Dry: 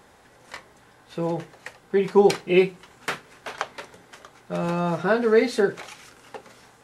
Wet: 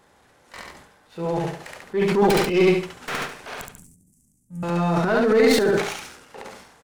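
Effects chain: tracing distortion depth 0.16 ms; 3.57–4.63 elliptic band-stop 210–8000 Hz, stop band 40 dB; sample leveller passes 1; feedback echo 70 ms, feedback 30%, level -3.5 dB; transient shaper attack -6 dB, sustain +10 dB; gain -3 dB

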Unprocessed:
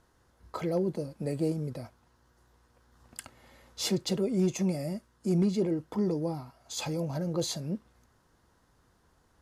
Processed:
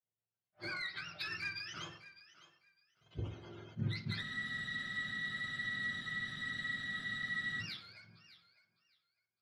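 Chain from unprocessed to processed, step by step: spectrum mirrored in octaves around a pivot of 870 Hz; LPF 4000 Hz 24 dB/oct; gate -60 dBFS, range -38 dB; tilt +3 dB/oct; compressor 6:1, threshold -44 dBFS, peak gain reduction 20 dB; soft clip -37 dBFS, distortion -21 dB; rotary speaker horn 8 Hz, later 1.2 Hz, at 3.75; thinning echo 0.606 s, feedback 20%, high-pass 420 Hz, level -16 dB; on a send at -3.5 dB: reverb RT60 0.55 s, pre-delay 3 ms; on the sum: spectral freeze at 4.26, 3.34 s; attack slew limiter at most 420 dB/s; gain +7 dB

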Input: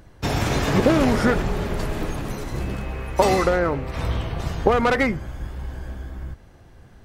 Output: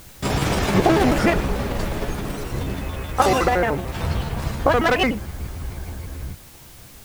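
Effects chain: trilling pitch shifter +5.5 st, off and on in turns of 74 ms; requantised 8-bit, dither triangular; gain +1.5 dB

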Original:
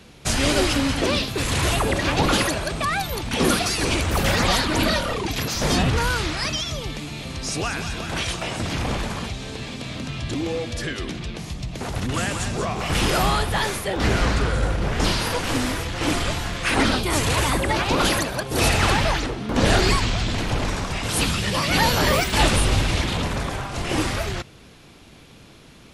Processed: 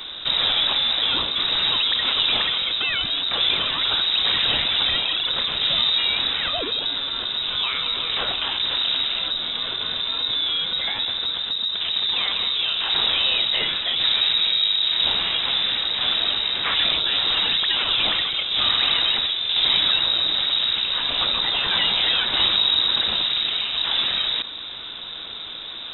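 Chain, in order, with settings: in parallel at -5 dB: sample-and-hold 23×; on the sum: inverted band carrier 3800 Hz; fast leveller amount 50%; gain -7 dB

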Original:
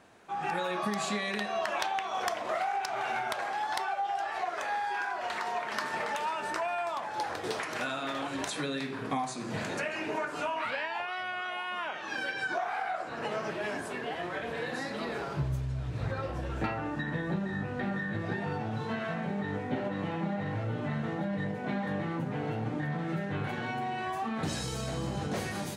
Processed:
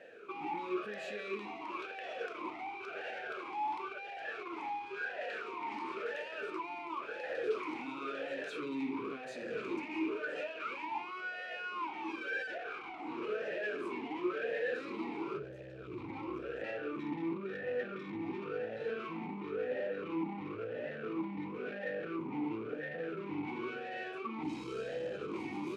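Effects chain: limiter -28.5 dBFS, peak gain reduction 9.5 dB; soft clip -39.5 dBFS, distortion -10 dB; vowel sweep e-u 0.96 Hz; gain +15.5 dB

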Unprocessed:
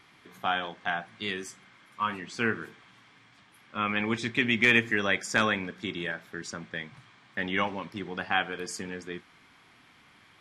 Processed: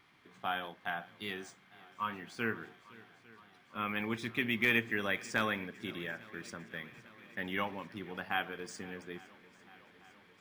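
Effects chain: swung echo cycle 0.85 s, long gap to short 1.5:1, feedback 64%, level -22 dB; decimation joined by straight lines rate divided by 3×; gain -7 dB

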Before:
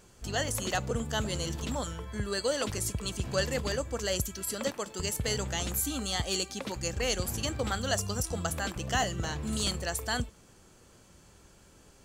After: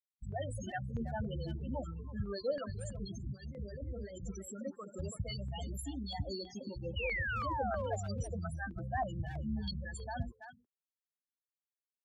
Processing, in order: CVSD 64 kbps; notches 60/120/180/240/300/360/420/480 Hz; dynamic EQ 430 Hz, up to -4 dB, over -49 dBFS, Q 5.3; 2.91–4.39 negative-ratio compressor -38 dBFS, ratio -1; 6.96–7.96 painted sound fall 410–3000 Hz -33 dBFS; bit-crush 7-bit; loudest bins only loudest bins 8; speakerphone echo 0.33 s, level -11 dB; stepped notch 3.1 Hz 340–4300 Hz; gain -2.5 dB

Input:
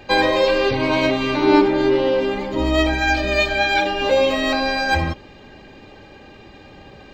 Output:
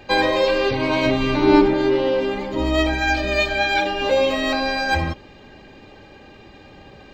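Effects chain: 1.06–1.74 low shelf 150 Hz +11 dB; gain -1.5 dB

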